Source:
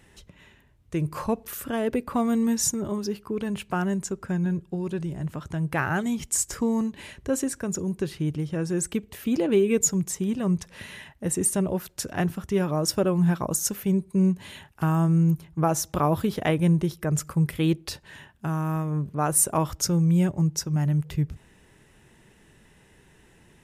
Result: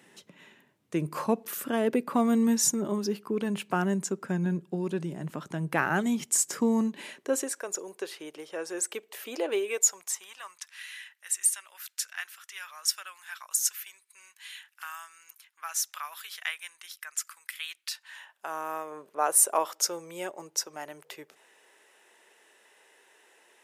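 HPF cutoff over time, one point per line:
HPF 24 dB/oct
6.89 s 180 Hz
7.6 s 450 Hz
9.49 s 450 Hz
10.84 s 1500 Hz
17.88 s 1500 Hz
18.56 s 450 Hz

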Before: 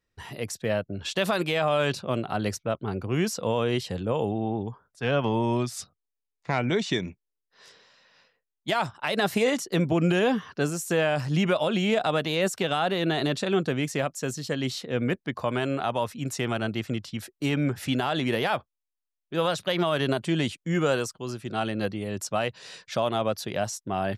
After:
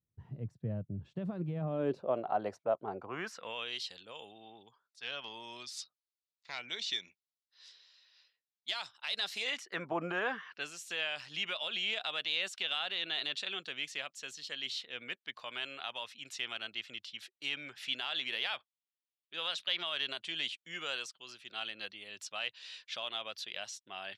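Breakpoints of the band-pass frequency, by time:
band-pass, Q 2
1.52 s 130 Hz
2.15 s 720 Hz
2.94 s 720 Hz
3.77 s 4100 Hz
9.38 s 4100 Hz
9.99 s 890 Hz
10.7 s 3200 Hz

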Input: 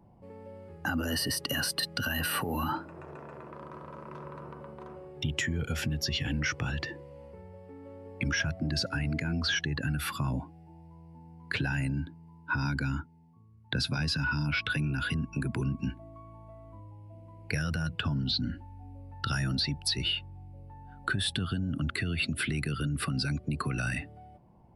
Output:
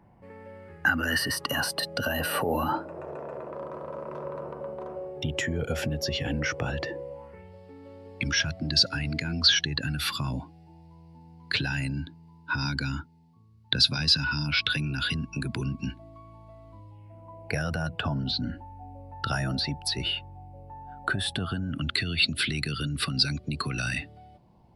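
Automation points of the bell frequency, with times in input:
bell +13 dB 1.1 oct
1.09 s 1800 Hz
1.92 s 570 Hz
7.1 s 570 Hz
7.53 s 4200 Hz
16.89 s 4200 Hz
17.35 s 700 Hz
21.46 s 700 Hz
21.93 s 4100 Hz

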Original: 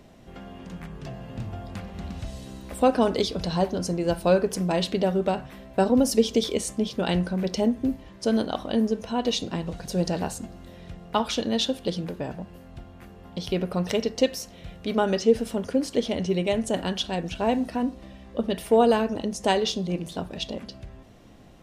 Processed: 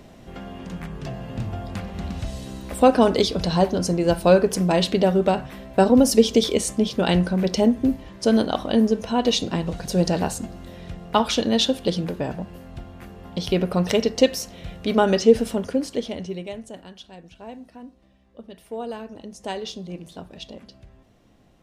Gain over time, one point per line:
15.42 s +5 dB
16.18 s -4 dB
16.88 s -15 dB
18.54 s -15 dB
19.71 s -6.5 dB

